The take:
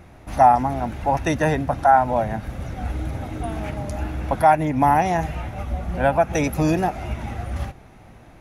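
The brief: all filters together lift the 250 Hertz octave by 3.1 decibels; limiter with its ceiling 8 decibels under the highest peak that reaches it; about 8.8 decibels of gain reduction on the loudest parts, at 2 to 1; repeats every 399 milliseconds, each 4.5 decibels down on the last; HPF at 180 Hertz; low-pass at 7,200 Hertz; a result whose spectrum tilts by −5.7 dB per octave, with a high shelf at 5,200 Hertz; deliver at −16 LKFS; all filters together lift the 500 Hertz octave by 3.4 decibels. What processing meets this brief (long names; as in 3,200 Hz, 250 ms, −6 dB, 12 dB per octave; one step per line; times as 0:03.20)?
high-pass filter 180 Hz
low-pass filter 7,200 Hz
parametric band 250 Hz +4 dB
parametric band 500 Hz +4 dB
high-shelf EQ 5,200 Hz +5 dB
downward compressor 2 to 1, threshold −23 dBFS
brickwall limiter −16.5 dBFS
repeating echo 399 ms, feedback 60%, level −4.5 dB
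level +10.5 dB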